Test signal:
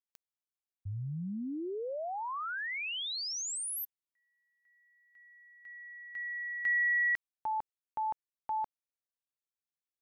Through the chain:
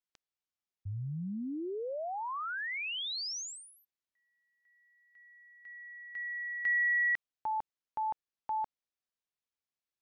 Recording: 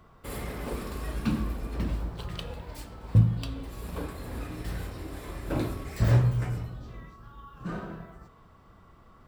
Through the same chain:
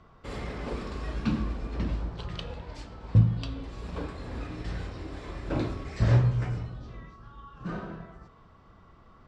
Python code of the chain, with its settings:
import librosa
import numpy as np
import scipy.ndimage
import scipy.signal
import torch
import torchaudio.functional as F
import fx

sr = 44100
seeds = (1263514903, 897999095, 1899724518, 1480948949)

y = scipy.signal.sosfilt(scipy.signal.butter(4, 6400.0, 'lowpass', fs=sr, output='sos'), x)